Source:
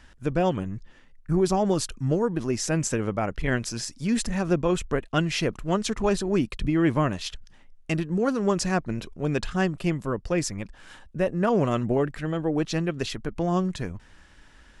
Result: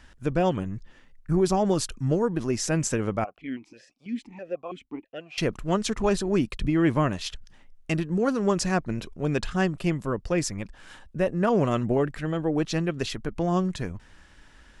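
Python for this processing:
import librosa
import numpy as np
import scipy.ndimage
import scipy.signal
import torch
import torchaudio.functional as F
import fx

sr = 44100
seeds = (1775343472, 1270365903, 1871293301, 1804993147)

y = fx.vowel_held(x, sr, hz=6.1, at=(3.24, 5.38))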